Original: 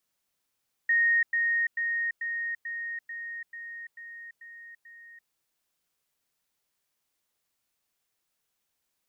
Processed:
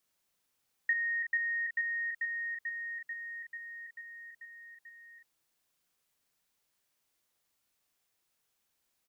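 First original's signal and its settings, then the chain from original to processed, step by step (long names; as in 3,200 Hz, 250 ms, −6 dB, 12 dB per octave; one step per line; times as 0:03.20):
level staircase 1,860 Hz −20 dBFS, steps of −3 dB, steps 10, 0.34 s 0.10 s
downward compressor, threshold −27 dBFS
double-tracking delay 39 ms −8 dB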